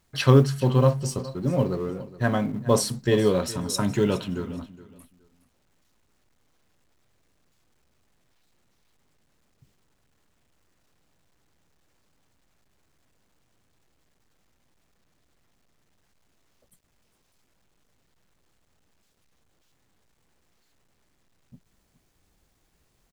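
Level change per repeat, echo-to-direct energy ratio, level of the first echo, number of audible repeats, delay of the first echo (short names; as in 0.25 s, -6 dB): -13.5 dB, -17.5 dB, -17.5 dB, 2, 0.417 s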